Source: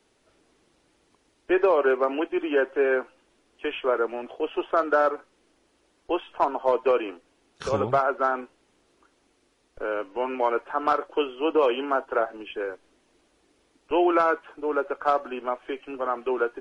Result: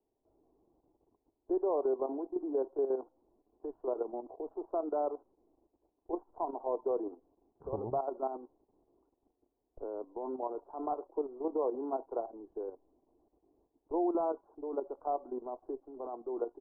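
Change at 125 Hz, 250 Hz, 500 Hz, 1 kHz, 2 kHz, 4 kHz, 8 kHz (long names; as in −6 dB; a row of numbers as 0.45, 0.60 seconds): −11.5 dB, −8.5 dB, −10.0 dB, −13.0 dB, below −35 dB, below −40 dB, can't be measured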